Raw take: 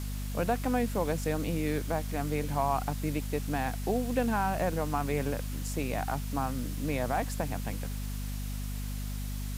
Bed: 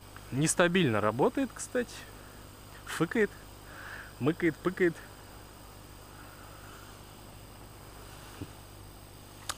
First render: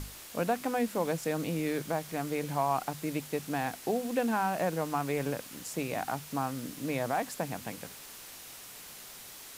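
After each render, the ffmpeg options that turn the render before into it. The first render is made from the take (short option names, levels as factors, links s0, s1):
-af "bandreject=f=50:t=h:w=6,bandreject=f=100:t=h:w=6,bandreject=f=150:t=h:w=6,bandreject=f=200:t=h:w=6,bandreject=f=250:t=h:w=6"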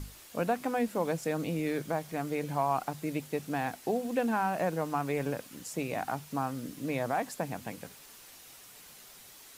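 -af "afftdn=nr=6:nf=-48"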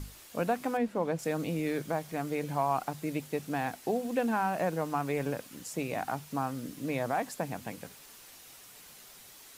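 -filter_complex "[0:a]asettb=1/sr,asplit=3[s0][s1][s2];[s0]atrim=end=0.774[s3];[s1]atrim=start=0.77:end=1.19,asetpts=PTS-STARTPTS,afade=t=in:d=0.004:c=qsin,afade=t=out:st=0.416:d=0.004:c=qsin,lowpass=f=2300:p=1[s4];[s2]atrim=start=1.186[s5];[s3][s4]acrossfade=d=0.004:c1=hsin:c2=qsin[s6];[s6][s5]acrossfade=d=0.004:c1=qsin:c2=hsin"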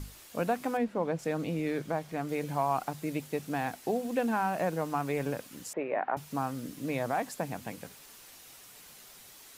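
-filter_complex "[0:a]asettb=1/sr,asplit=3[s0][s1][s2];[s0]atrim=end=0.844[s3];[s1]atrim=start=0.84:end=2.29,asetpts=PTS-STARTPTS,afade=t=in:d=0.004:c=qsin,afade=t=out:st=1.446:d=0.004:c=qsin,highshelf=f=6200:g=-8[s4];[s2]atrim=start=2.286[s5];[s3][s4]acrossfade=d=0.004:c1=hsin:c2=qsin[s6];[s6][s5]acrossfade=d=0.004:c1=qsin:c2=hsin,asettb=1/sr,asplit=3[s7][s8][s9];[s7]atrim=end=5.734[s10];[s8]atrim=start=5.73:end=6.17,asetpts=PTS-STARTPTS,afade=t=in:d=0.004:c=qsin,afade=t=out:st=0.436:d=0.004:c=qsin,highpass=320,equalizer=f=390:t=q:w=4:g=5,equalizer=f=580:t=q:w=4:g=7,equalizer=f=960:t=q:w=4:g=4,equalizer=f=1800:t=q:w=4:g=4,lowpass=f=2300:w=0.5412,lowpass=f=2300:w=1.3066[s11];[s9]atrim=start=6.166[s12];[s10][s11]acrossfade=d=0.004:c1=hsin:c2=qsin[s13];[s13][s12]acrossfade=d=0.004:c1=qsin:c2=hsin"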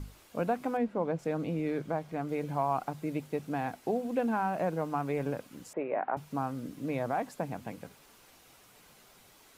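-af "highshelf=f=2700:g=-10,bandreject=f=1800:w=20"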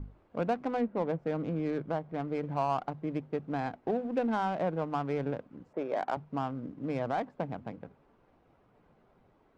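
-af "adynamicsmooth=sensitivity=5:basefreq=910"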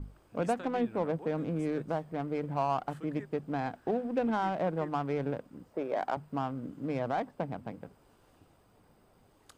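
-filter_complex "[1:a]volume=0.0891[s0];[0:a][s0]amix=inputs=2:normalize=0"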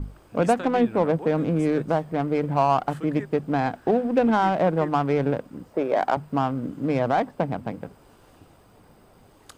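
-af "volume=3.16"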